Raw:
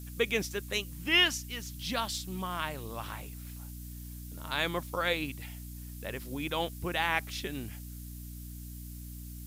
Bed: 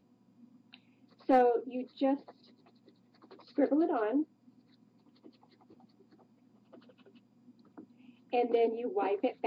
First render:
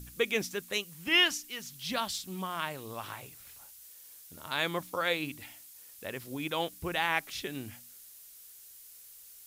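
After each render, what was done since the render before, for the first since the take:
hum removal 60 Hz, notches 5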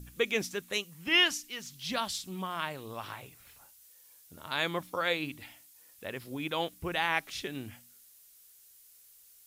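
noise reduction from a noise print 6 dB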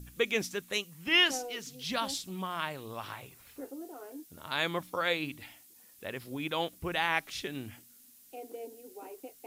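mix in bed −15 dB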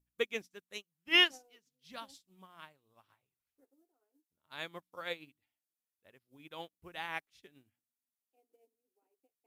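expander for the loud parts 2.5 to 1, over −47 dBFS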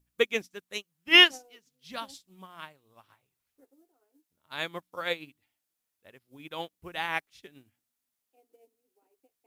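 level +8.5 dB

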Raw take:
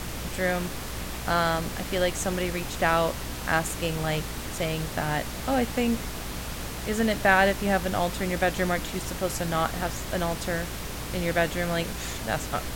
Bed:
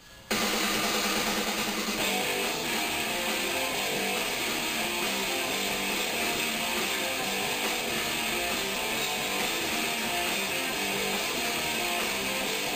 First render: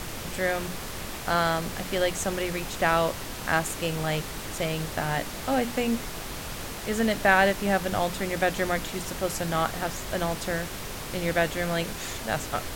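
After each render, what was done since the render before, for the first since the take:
mains-hum notches 60/120/180/240/300 Hz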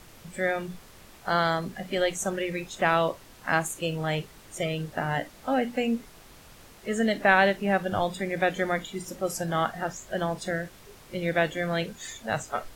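noise reduction from a noise print 15 dB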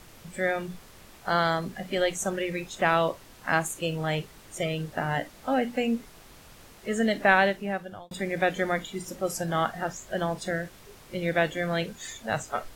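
0:07.32–0:08.11: fade out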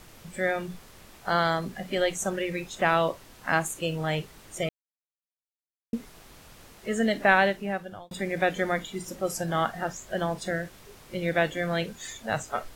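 0:04.69–0:05.93: silence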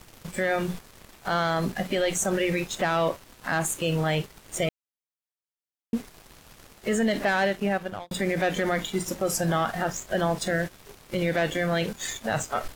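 leveller curve on the samples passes 2
brickwall limiter −17 dBFS, peak gain reduction 10 dB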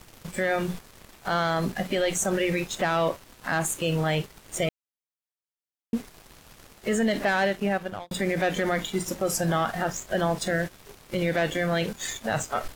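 no processing that can be heard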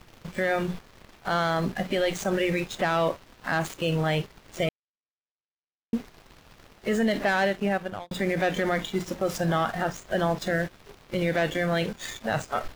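running median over 5 samples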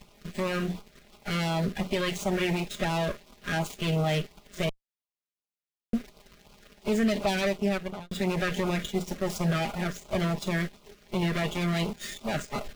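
lower of the sound and its delayed copy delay 4.9 ms
auto-filter notch sine 2.8 Hz 830–1,800 Hz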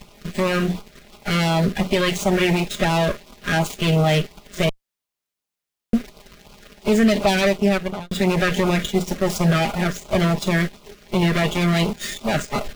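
level +9 dB

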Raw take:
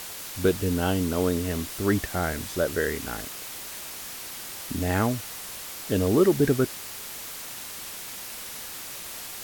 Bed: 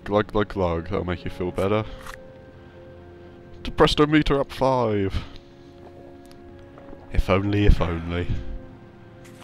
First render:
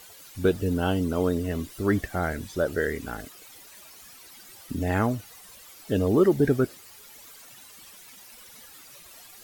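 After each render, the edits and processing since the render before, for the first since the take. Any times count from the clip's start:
broadband denoise 14 dB, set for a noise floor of −38 dBFS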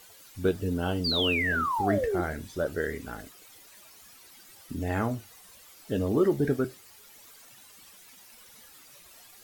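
0:01.04–0:02.21: sound drawn into the spectrogram fall 330–4,900 Hz −24 dBFS
flanger 0.27 Hz, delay 8.5 ms, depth 8.1 ms, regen −64%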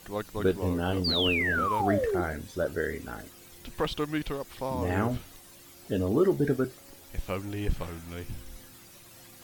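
mix in bed −13 dB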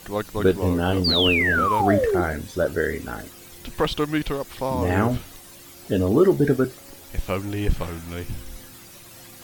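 level +7 dB

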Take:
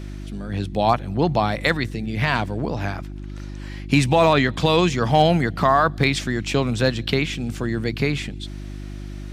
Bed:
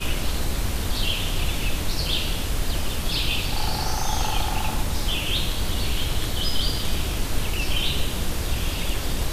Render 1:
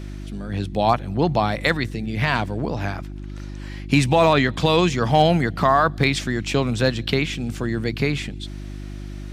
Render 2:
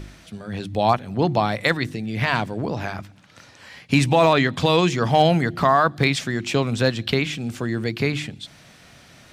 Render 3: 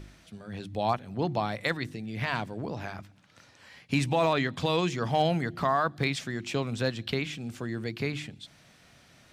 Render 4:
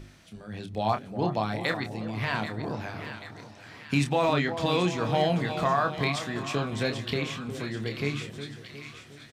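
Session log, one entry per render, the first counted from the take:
no processing that can be heard
hum removal 50 Hz, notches 7
level −9 dB
double-tracking delay 28 ms −7 dB; echo with a time of its own for lows and highs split 1,200 Hz, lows 360 ms, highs 785 ms, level −9.5 dB

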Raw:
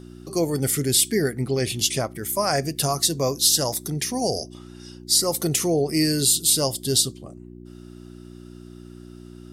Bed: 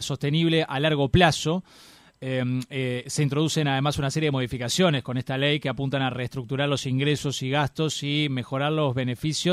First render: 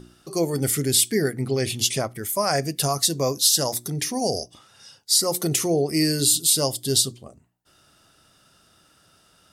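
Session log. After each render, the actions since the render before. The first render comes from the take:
hum removal 60 Hz, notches 6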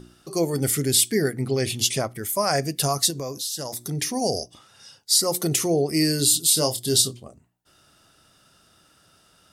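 0:03.10–0:03.89: downward compressor 4 to 1, threshold −28 dBFS
0:06.54–0:07.20: double-tracking delay 25 ms −7 dB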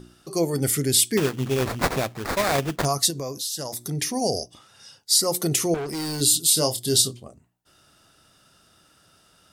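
0:01.17–0:02.85: sample-rate reduction 3,000 Hz, jitter 20%
0:05.74–0:06.21: hard clipping −27.5 dBFS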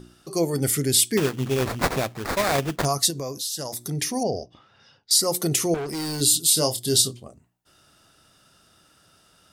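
0:04.23–0:05.11: high-frequency loss of the air 260 metres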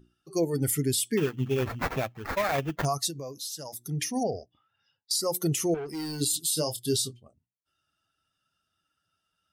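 spectral dynamics exaggerated over time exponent 1.5
brickwall limiter −17.5 dBFS, peak gain reduction 9.5 dB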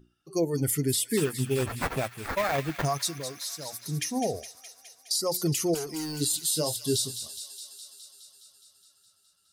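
delay with a high-pass on its return 208 ms, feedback 72%, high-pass 2,000 Hz, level −9 dB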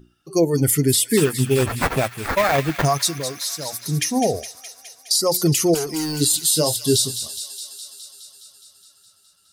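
level +9 dB

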